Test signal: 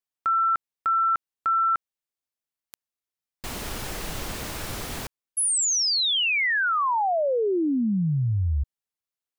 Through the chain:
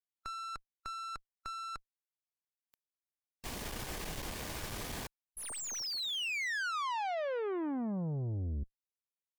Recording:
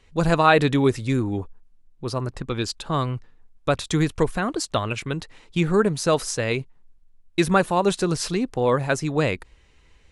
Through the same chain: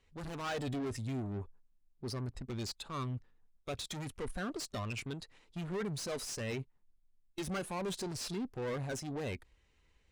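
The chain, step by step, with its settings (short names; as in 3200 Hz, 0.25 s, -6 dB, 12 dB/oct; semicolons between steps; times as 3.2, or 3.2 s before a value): tube stage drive 30 dB, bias 0.55; spectral noise reduction 7 dB; slew limiter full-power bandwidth 110 Hz; gain -4 dB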